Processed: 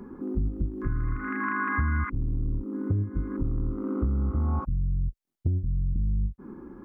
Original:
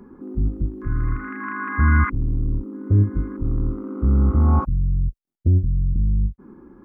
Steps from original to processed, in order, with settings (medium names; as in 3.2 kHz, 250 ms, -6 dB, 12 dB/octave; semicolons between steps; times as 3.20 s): compression 6:1, threshold -26 dBFS, peak gain reduction 14 dB; trim +2 dB